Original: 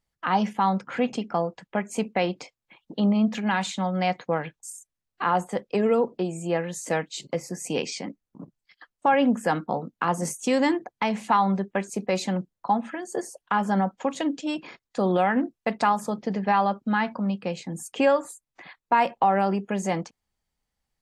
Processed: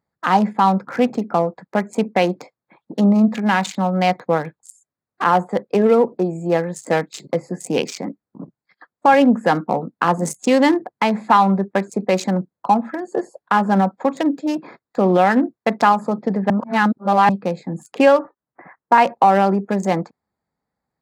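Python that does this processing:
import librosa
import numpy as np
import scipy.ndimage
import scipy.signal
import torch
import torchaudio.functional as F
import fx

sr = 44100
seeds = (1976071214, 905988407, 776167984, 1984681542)

y = fx.steep_lowpass(x, sr, hz=2100.0, slope=36, at=(18.19, 18.98))
y = fx.edit(y, sr, fx.reverse_span(start_s=16.5, length_s=0.79), tone=tone)
y = fx.wiener(y, sr, points=15)
y = scipy.signal.sosfilt(scipy.signal.butter(2, 130.0, 'highpass', fs=sr, output='sos'), y)
y = fx.high_shelf(y, sr, hz=7300.0, db=3.5)
y = y * librosa.db_to_amplitude(8.0)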